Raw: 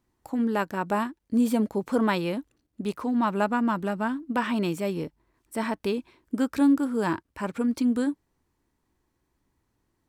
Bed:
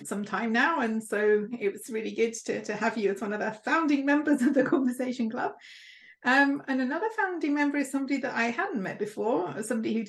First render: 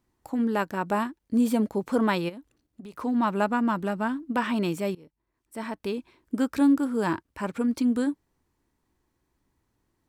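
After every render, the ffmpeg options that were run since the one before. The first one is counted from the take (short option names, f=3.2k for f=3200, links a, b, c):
-filter_complex "[0:a]asplit=3[a][b][c];[a]afade=t=out:st=2.28:d=0.02[d];[b]acompressor=threshold=-38dB:ratio=10:attack=3.2:release=140:knee=1:detection=peak,afade=t=in:st=2.28:d=0.02,afade=t=out:st=2.92:d=0.02[e];[c]afade=t=in:st=2.92:d=0.02[f];[d][e][f]amix=inputs=3:normalize=0,asplit=2[g][h];[g]atrim=end=4.95,asetpts=PTS-STARTPTS,afade=t=out:st=4.946:d=0.004:c=hsin:silence=0.0668344[i];[h]atrim=start=4.95,asetpts=PTS-STARTPTS,afade=t=in:d=1.4:silence=0.0668344[j];[i][j]concat=n=2:v=0:a=1"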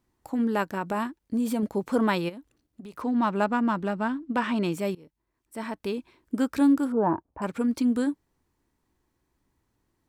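-filter_complex "[0:a]asettb=1/sr,asplit=3[a][b][c];[a]atrim=end=0.734[d];[b]atrim=start=0.73:end=1.63,asetpts=PTS-STARTPTS,afade=t=in:d=0.004:c=qsin,afade=t=out:st=0.896:d=0.004:c=qsin,acompressor=threshold=-24dB:ratio=2.5:attack=3.2:release=140:knee=1:detection=peak[e];[c]atrim=start=1.626[f];[d][e]acrossfade=d=0.004:c1=hsin:c2=qsin[g];[g][f]acrossfade=d=0.004:c1=qsin:c2=hsin,asettb=1/sr,asplit=3[h][i][j];[h]atrim=end=3.024[k];[i]atrim=start=3.02:end=4.73,asetpts=PTS-STARTPTS,afade=t=in:d=0.004:c=qsin,afade=t=out:st=1.706:d=0.004:c=qsin,adynamicsmooth=sensitivity=7:basefreq=6.7k[l];[j]atrim=start=4.726[m];[k][l]acrossfade=d=0.004:c1=hsin:c2=qsin[n];[n][m]acrossfade=d=0.004:c1=qsin:c2=hsin,asettb=1/sr,asplit=3[o][p][q];[o]atrim=end=6.924[r];[p]atrim=start=6.92:end=7.42,asetpts=PTS-STARTPTS,afade=t=in:d=0.004:c=qsin,afade=t=out:st=0.496:d=0.004:c=qsin,lowpass=f=780:t=q:w=2.5[s];[q]atrim=start=7.416[t];[r][s]acrossfade=d=0.004:c1=hsin:c2=qsin[u];[u][t]acrossfade=d=0.004:c1=qsin:c2=hsin"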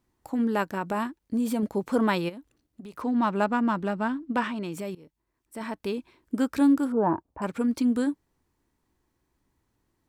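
-filter_complex "[0:a]asettb=1/sr,asplit=3[a][b][c];[a]atrim=end=4.474[d];[b]atrim=start=4.47:end=5.61,asetpts=PTS-STARTPTS,afade=t=in:d=0.004:c=qsin,afade=t=out:st=1.136:d=0.004:c=qsin,acompressor=threshold=-31dB:ratio=3:attack=3.2:release=140:knee=1:detection=peak[e];[c]atrim=start=5.606[f];[d][e]acrossfade=d=0.004:c1=hsin:c2=qsin[g];[g][f]acrossfade=d=0.004:c1=qsin:c2=hsin"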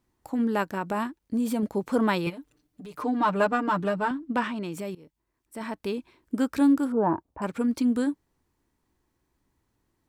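-filter_complex "[0:a]asettb=1/sr,asplit=3[a][b][c];[a]atrim=end=2.264[d];[b]atrim=start=2.26:end=4.11,asetpts=PTS-STARTPTS,afade=t=in:d=0.004:c=qsin,afade=t=out:st=1.846:d=0.004:c=qsin,aecho=1:1:6.7:0.95,atrim=end_sample=81585[e];[c]atrim=start=4.106[f];[d][e]acrossfade=d=0.004:c1=hsin:c2=qsin[g];[g][f]acrossfade=d=0.004:c1=qsin:c2=hsin"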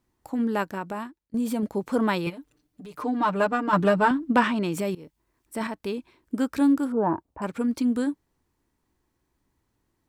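-filter_complex "[0:a]asplit=4[a][b][c][d];[a]atrim=end=1.34,asetpts=PTS-STARTPTS,afade=t=out:st=0.65:d=0.69:silence=0.125893[e];[b]atrim=start=1.34:end=3.732,asetpts=PTS-STARTPTS,afade=t=in:d=0.004:c=hsin:silence=0.125893[f];[c]atrim=start=3.728:end=5.672,asetpts=PTS-STARTPTS,volume=6.5dB[g];[d]atrim=start=5.668[h];[e][f]concat=n=2:v=0:a=1[i];[i][g]acrossfade=d=0.004:c1=hsin:c2=hsin[j];[j][h]acrossfade=d=0.004:c1=hsin:c2=hsin"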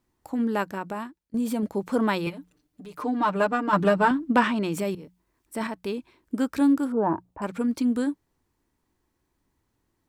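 -af "bandreject=f=60:t=h:w=6,bandreject=f=120:t=h:w=6,bandreject=f=180:t=h:w=6"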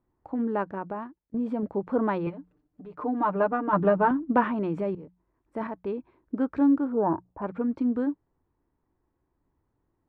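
-af "lowpass=1.2k,equalizer=f=220:w=3.7:g=-3.5"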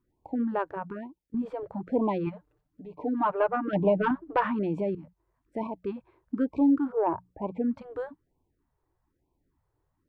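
-af "asoftclip=type=tanh:threshold=-12dB,afftfilt=real='re*(1-between(b*sr/1024,200*pow(1600/200,0.5+0.5*sin(2*PI*1.1*pts/sr))/1.41,200*pow(1600/200,0.5+0.5*sin(2*PI*1.1*pts/sr))*1.41))':imag='im*(1-between(b*sr/1024,200*pow(1600/200,0.5+0.5*sin(2*PI*1.1*pts/sr))/1.41,200*pow(1600/200,0.5+0.5*sin(2*PI*1.1*pts/sr))*1.41))':win_size=1024:overlap=0.75"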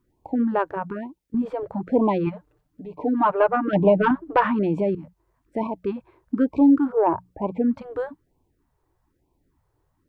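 -af "volume=6.5dB"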